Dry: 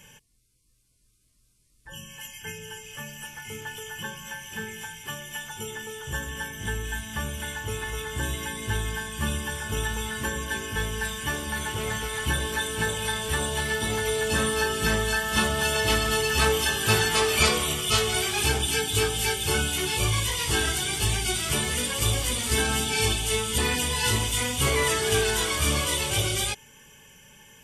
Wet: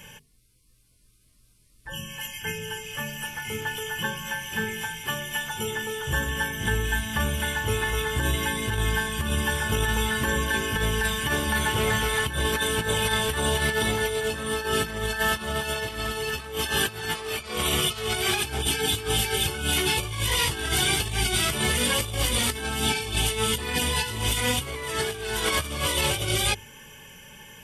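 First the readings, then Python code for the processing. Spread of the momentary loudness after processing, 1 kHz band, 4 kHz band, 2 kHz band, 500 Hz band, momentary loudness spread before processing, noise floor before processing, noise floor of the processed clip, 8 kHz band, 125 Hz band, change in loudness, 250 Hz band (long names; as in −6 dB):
8 LU, +1.0 dB, +1.0 dB, +1.0 dB, 0.0 dB, 14 LU, −65 dBFS, −60 dBFS, −1.5 dB, 0.0 dB, 0.0 dB, +1.5 dB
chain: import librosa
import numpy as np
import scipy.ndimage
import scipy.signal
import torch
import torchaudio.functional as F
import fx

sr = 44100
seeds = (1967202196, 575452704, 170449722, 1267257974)

y = fx.peak_eq(x, sr, hz=7000.0, db=-6.0, octaves=0.8)
y = fx.hum_notches(y, sr, base_hz=50, count=9)
y = fx.over_compress(y, sr, threshold_db=-29.0, ratio=-0.5)
y = F.gain(torch.from_numpy(y), 4.0).numpy()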